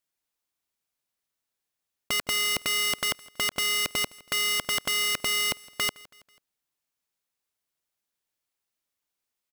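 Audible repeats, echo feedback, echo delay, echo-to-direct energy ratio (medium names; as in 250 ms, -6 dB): 2, 48%, 163 ms, -21.5 dB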